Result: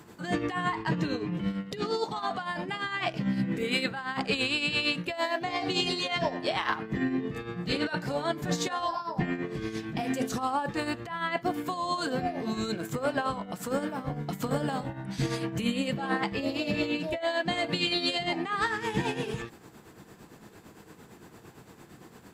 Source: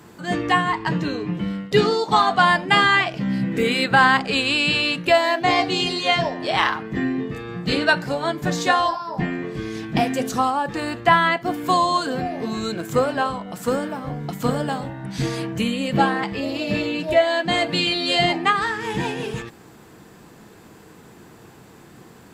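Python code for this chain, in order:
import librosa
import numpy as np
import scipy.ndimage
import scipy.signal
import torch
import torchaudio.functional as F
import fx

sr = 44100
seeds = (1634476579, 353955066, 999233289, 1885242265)

y = fx.over_compress(x, sr, threshold_db=-22.0, ratio=-1.0)
y = y * (1.0 - 0.59 / 2.0 + 0.59 / 2.0 * np.cos(2.0 * np.pi * 8.8 * (np.arange(len(y)) / sr)))
y = y * librosa.db_to_amplitude(-4.5)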